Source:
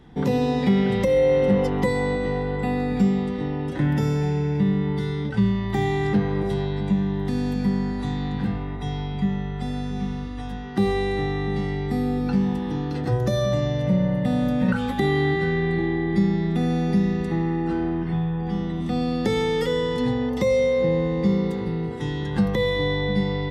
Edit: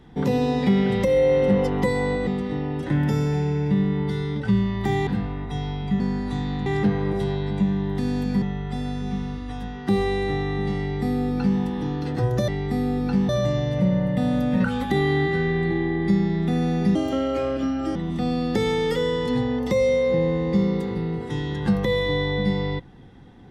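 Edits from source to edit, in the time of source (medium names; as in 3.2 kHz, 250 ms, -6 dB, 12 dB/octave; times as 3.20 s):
2.27–3.16 s: delete
5.96–7.72 s: swap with 8.38–9.31 s
11.68–12.49 s: copy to 13.37 s
17.03–18.66 s: speed 162%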